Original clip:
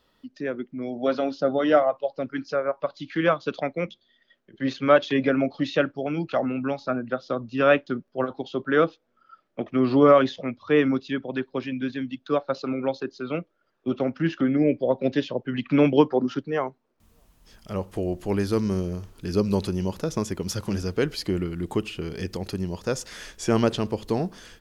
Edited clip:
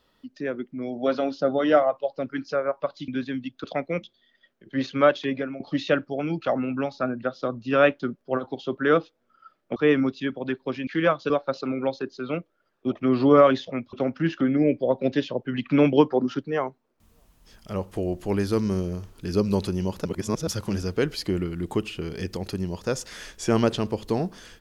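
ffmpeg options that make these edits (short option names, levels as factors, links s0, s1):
-filter_complex "[0:a]asplit=11[s0][s1][s2][s3][s4][s5][s6][s7][s8][s9][s10];[s0]atrim=end=3.082[s11];[s1]atrim=start=11.748:end=12.312[s12];[s2]atrim=start=3.508:end=5.47,asetpts=PTS-STARTPTS,afade=t=out:st=1.152:d=0.81:c=qsin:silence=0.133352[s13];[s3]atrim=start=5.47:end=9.632,asetpts=PTS-STARTPTS,afade=t=in:d=0.004:c=hsin:silence=0.133352[s14];[s4]atrim=start=10.638:end=11.752[s15];[s5]atrim=start=3.078:end=3.512[s16];[s6]atrim=start=12.308:end=13.932[s17];[s7]atrim=start=9.628:end=10.642[s18];[s8]atrim=start=13.928:end=20.052[s19];[s9]atrim=start=20.048:end=20.472,asetpts=PTS-STARTPTS,areverse[s20];[s10]atrim=start=20.468[s21];[s11][s12]acrossfade=d=0.004:c1=hsin:c2=hsin[s22];[s13][s14]concat=n=2:v=0:a=1[s23];[s22][s23]acrossfade=d=0.004:c1=hsin:c2=hsin[s24];[s24][s15]acrossfade=d=0.004:c1=hsin:c2=hsin[s25];[s25][s16]acrossfade=d=0.004:c1=hsin:c2=hsin[s26];[s26][s17]acrossfade=d=0.004:c1=hsin:c2=hsin[s27];[s27][s18]acrossfade=d=0.004:c1=hsin:c2=hsin[s28];[s28][s19]acrossfade=d=0.004:c1=hsin:c2=hsin[s29];[s29][s20]acrossfade=d=0.004:c1=hsin:c2=hsin[s30];[s30][s21]acrossfade=d=0.004:c1=hsin:c2=hsin"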